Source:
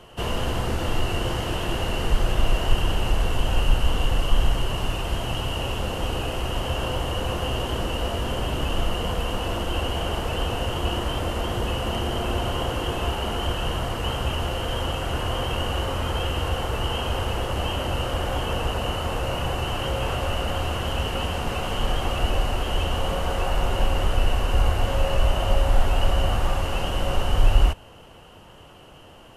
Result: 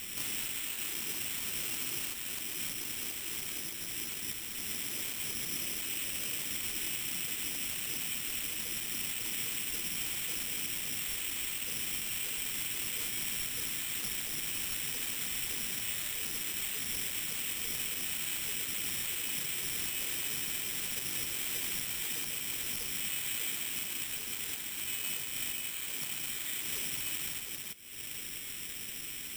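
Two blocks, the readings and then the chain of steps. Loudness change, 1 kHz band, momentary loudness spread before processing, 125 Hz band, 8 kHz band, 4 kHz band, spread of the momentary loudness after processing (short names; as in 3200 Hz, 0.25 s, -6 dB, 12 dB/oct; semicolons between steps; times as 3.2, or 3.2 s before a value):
-7.5 dB, -24.0 dB, 4 LU, -27.0 dB, +6.0 dB, -8.0 dB, 3 LU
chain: HPF 76 Hz 6 dB/oct; compressor 6:1, threshold -39 dBFS, peak gain reduction 20 dB; wavefolder -36 dBFS; inverted band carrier 3100 Hz; careless resampling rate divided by 8×, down filtered, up zero stuff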